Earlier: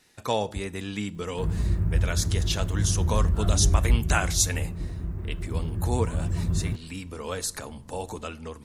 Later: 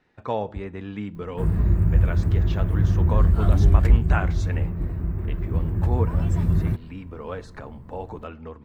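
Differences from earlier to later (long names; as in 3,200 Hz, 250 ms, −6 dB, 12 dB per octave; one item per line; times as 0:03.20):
speech: add low-pass filter 1,700 Hz 12 dB per octave
background +5.5 dB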